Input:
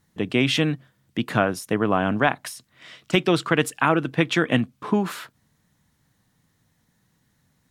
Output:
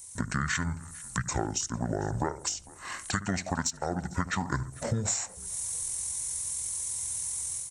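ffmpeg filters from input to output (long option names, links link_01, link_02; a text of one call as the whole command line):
ffmpeg -i in.wav -filter_complex "[0:a]dynaudnorm=framelen=280:gausssize=3:maxgain=14.5dB,highshelf=frequency=3300:gain=11.5,asplit=2[link_01][link_02];[link_02]adelay=71,lowpass=frequency=1600:poles=1,volume=-13dB,asplit=2[link_03][link_04];[link_04]adelay=71,lowpass=frequency=1600:poles=1,volume=0.39,asplit=2[link_05][link_06];[link_06]adelay=71,lowpass=frequency=1600:poles=1,volume=0.39,asplit=2[link_07][link_08];[link_08]adelay=71,lowpass=frequency=1600:poles=1,volume=0.39[link_09];[link_03][link_05][link_07][link_09]amix=inputs=4:normalize=0[link_10];[link_01][link_10]amix=inputs=2:normalize=0,asetrate=24046,aresample=44100,atempo=1.83401,aexciter=amount=13.1:drive=3.7:freq=4900,acompressor=threshold=-29dB:ratio=4,equalizer=frequency=4900:width_type=o:width=0.31:gain=-15,asplit=2[link_11][link_12];[link_12]asplit=3[link_13][link_14][link_15];[link_13]adelay=450,afreqshift=-44,volume=-22.5dB[link_16];[link_14]adelay=900,afreqshift=-88,volume=-31.1dB[link_17];[link_15]adelay=1350,afreqshift=-132,volume=-39.8dB[link_18];[link_16][link_17][link_18]amix=inputs=3:normalize=0[link_19];[link_11][link_19]amix=inputs=2:normalize=0" out.wav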